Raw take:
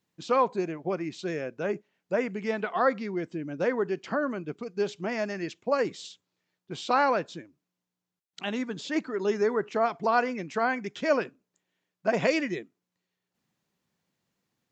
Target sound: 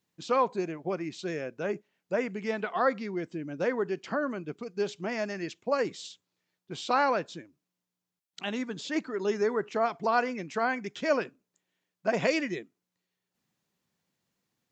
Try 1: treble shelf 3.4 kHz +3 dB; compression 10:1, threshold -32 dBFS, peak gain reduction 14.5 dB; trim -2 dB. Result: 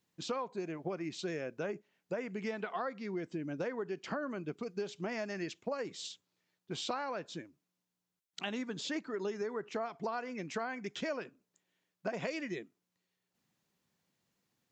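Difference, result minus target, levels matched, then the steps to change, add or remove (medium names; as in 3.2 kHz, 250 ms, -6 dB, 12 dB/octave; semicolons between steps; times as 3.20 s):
compression: peak gain reduction +14.5 dB
remove: compression 10:1, threshold -32 dBFS, peak gain reduction 14.5 dB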